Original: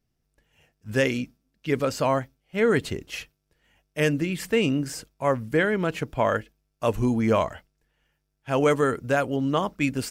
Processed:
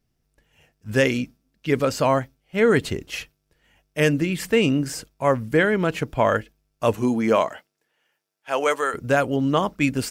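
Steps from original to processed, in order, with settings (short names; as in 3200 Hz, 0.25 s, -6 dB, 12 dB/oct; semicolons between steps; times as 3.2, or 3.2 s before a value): 6.93–8.93 HPF 170 Hz -> 710 Hz 12 dB/oct; gain +3.5 dB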